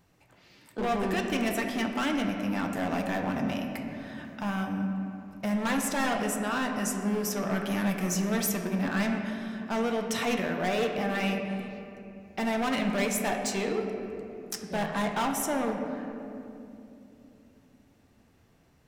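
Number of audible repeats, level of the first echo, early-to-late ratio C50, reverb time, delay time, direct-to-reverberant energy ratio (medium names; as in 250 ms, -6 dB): no echo, no echo, 4.5 dB, 2.8 s, no echo, 2.5 dB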